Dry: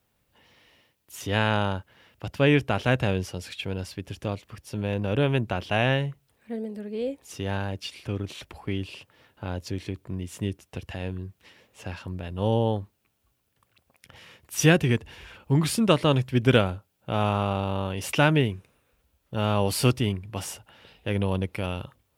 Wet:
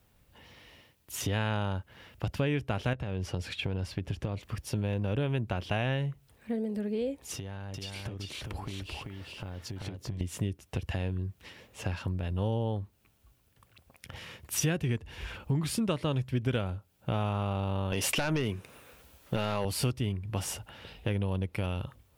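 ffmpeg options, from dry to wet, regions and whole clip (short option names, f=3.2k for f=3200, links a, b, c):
-filter_complex "[0:a]asettb=1/sr,asplit=3[a][b][c];[a]atrim=end=2.934[d];[b]atrim=start=2.93:end=4.41,asetpts=PTS-STARTPTS,afade=t=in:d=0.004:c=qsin,afade=t=out:st=1.476:d=0.004:c=qsin,acompressor=threshold=-28dB:ratio=12:attack=3.2:release=140:knee=1:detection=peak,aemphasis=mode=reproduction:type=cd[e];[c]atrim=start=4.406[f];[d][e]acrossfade=d=0.004:c1=hsin:c2=qsin[g];[g][f]acrossfade=d=0.004:c1=qsin:c2=hsin,asettb=1/sr,asplit=3[h][i][j];[h]atrim=end=7.354[k];[i]atrim=start=7.35:end=10.21,asetpts=PTS-STARTPTS,afade=t=in:d=0.004:c=qsin,afade=t=out:st=2.856:d=0.004:c=qsin,bandreject=f=2.5k:w=29,acompressor=threshold=-41dB:ratio=12:attack=3.2:release=140:knee=1:detection=peak,aecho=1:1:388:0.708,atrim=end_sample=126126[l];[j]atrim=start=10.206[m];[k][l]acrossfade=d=0.004:c1=hsin:c2=qsin[n];[n][m]acrossfade=d=0.004:c1=qsin:c2=hsin,asettb=1/sr,asplit=3[o][p][q];[o]atrim=end=17.924[r];[p]atrim=start=17.92:end=19.65,asetpts=PTS-STARTPTS,afade=t=in:d=0.004:c=qsin,afade=t=out:st=1.726:d=0.004:c=qsin,highpass=f=320:p=1,acompressor=threshold=-26dB:ratio=5:attack=3.2:release=140:knee=1:detection=peak,aeval=exprs='0.2*sin(PI/2*2.51*val(0)/0.2)':c=same[s];[q]atrim=start=19.646[t];[r][s]acrossfade=d=0.004:c1=hsin:c2=qsin[u];[u][t]acrossfade=d=0.004:c1=qsin:c2=hsin,lowshelf=f=110:g=9.5,acompressor=threshold=-33dB:ratio=4,volume=3.5dB"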